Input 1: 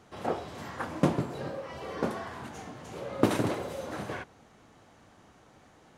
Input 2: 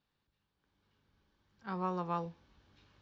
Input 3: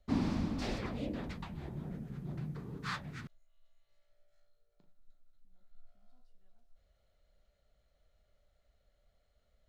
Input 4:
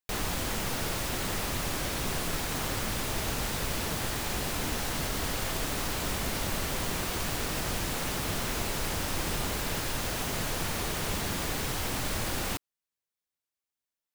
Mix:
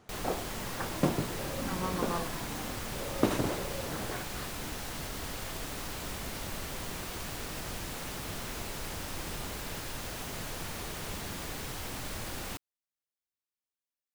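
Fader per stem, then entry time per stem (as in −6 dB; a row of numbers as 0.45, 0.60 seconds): −3.0, −0.5, −7.5, −7.0 decibels; 0.00, 0.00, 1.50, 0.00 seconds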